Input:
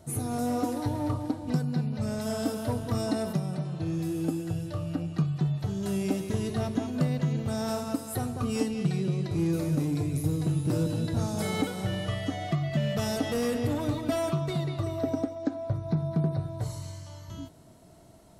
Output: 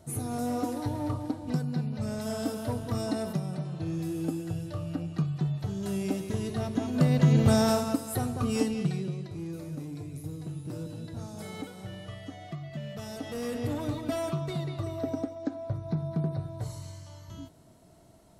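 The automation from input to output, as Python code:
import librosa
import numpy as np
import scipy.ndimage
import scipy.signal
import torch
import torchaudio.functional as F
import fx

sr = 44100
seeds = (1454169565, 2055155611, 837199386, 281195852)

y = fx.gain(x, sr, db=fx.line((6.68, -2.0), (7.47, 10.0), (8.0, 1.0), (8.72, 1.0), (9.4, -10.5), (13.08, -10.5), (13.67, -3.0)))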